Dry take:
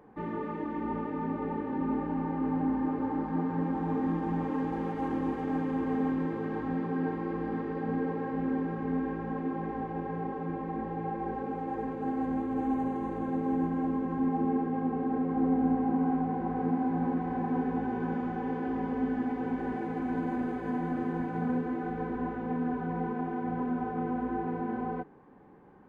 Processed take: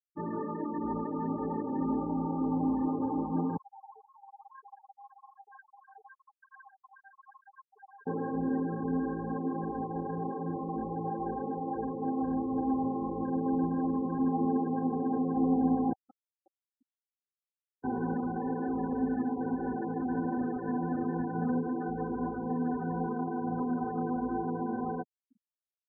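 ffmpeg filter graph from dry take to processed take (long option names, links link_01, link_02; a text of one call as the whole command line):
ffmpeg -i in.wav -filter_complex "[0:a]asettb=1/sr,asplit=3[link_01][link_02][link_03];[link_01]atrim=end=3.574[link_04];[link_02]atrim=start=3.57:end=8.07,asetpts=PTS-STARTPTS,afade=type=in:duration=0.004:curve=qsin,afade=type=out:start_time=4.496:duration=0.004:curve=qsin,highpass=1200,flanger=delay=1.8:depth=7.9:regen=46:speed=1:shape=sinusoidal[link_05];[link_03]atrim=start=8.066[link_06];[link_04][link_05]acrossfade=duration=0.004:curve1=hsin:curve2=qsin[link_07];[link_07][link_06]acrossfade=duration=0.004:curve1=qsin:curve2=hsin,asettb=1/sr,asplit=3[link_08][link_09][link_10];[link_08]atrim=end=15.934[link_11];[link_09]atrim=start=15.93:end=17.84,asetpts=PTS-STARTPTS,afade=type=in:duration=0.004:curve=qsin,afade=type=out:start_time=1.906:duration=0.004:curve=qsin,highpass=frequency=1400:poles=1,acrusher=bits=4:mix=0:aa=0.5[link_12];[link_10]atrim=start=17.836[link_13];[link_11][link_12]acrossfade=duration=0.004:curve1=hsin:curve2=qsin[link_14];[link_14][link_13]acrossfade=duration=0.004:curve1=qsin:curve2=hsin,highpass=48,afftfilt=real='re*gte(hypot(re,im),0.02)':imag='im*gte(hypot(re,im),0.02)':win_size=1024:overlap=0.75" out.wav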